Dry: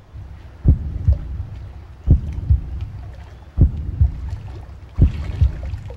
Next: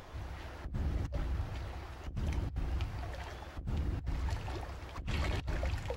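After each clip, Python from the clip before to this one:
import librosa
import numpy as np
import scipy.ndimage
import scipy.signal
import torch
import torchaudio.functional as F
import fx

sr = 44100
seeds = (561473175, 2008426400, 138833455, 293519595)

y = fx.low_shelf(x, sr, hz=190.0, db=-4.5)
y = fx.over_compress(y, sr, threshold_db=-27.0, ratio=-1.0)
y = fx.peak_eq(y, sr, hz=120.0, db=-9.0, octaves=2.1)
y = y * librosa.db_to_amplitude(-3.0)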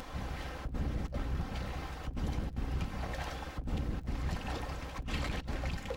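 y = fx.lower_of_two(x, sr, delay_ms=3.8)
y = fx.rider(y, sr, range_db=3, speed_s=0.5)
y = fx.dmg_crackle(y, sr, seeds[0], per_s=56.0, level_db=-56.0)
y = y * librosa.db_to_amplitude(3.5)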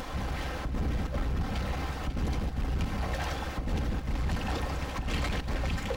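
y = fx.leveller(x, sr, passes=2)
y = y + 10.0 ** (-10.0 / 20.0) * np.pad(y, (int(545 * sr / 1000.0), 0))[:len(y)]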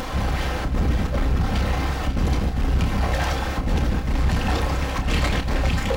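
y = fx.doubler(x, sr, ms=30.0, db=-7.5)
y = y * librosa.db_to_amplitude(8.5)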